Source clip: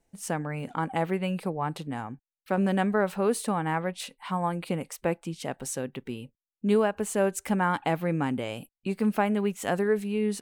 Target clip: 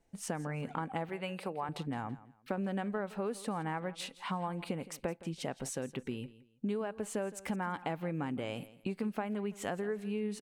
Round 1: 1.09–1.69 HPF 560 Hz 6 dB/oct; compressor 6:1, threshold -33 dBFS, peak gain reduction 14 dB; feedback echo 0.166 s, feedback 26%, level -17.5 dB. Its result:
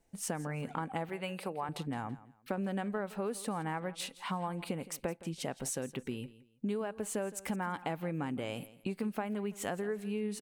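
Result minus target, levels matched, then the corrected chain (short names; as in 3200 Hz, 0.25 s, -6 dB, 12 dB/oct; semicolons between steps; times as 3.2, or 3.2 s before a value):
8000 Hz band +4.0 dB
1.09–1.69 HPF 560 Hz 6 dB/oct; compressor 6:1, threshold -33 dBFS, peak gain reduction 14 dB; high shelf 8900 Hz -10 dB; feedback echo 0.166 s, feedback 26%, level -17.5 dB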